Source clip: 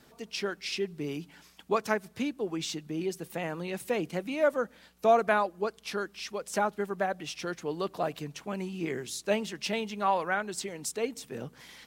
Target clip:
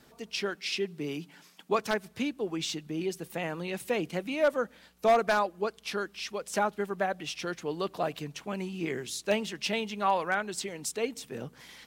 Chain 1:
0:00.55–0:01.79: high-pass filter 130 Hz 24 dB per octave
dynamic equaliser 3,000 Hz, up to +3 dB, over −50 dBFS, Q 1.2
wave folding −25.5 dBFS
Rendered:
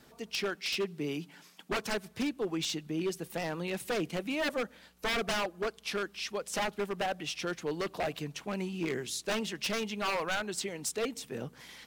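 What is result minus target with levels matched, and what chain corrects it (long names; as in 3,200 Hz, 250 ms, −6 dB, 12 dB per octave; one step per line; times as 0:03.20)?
wave folding: distortion +19 dB
0:00.55–0:01.79: high-pass filter 130 Hz 24 dB per octave
dynamic equaliser 3,000 Hz, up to +3 dB, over −50 dBFS, Q 1.2
wave folding −15.5 dBFS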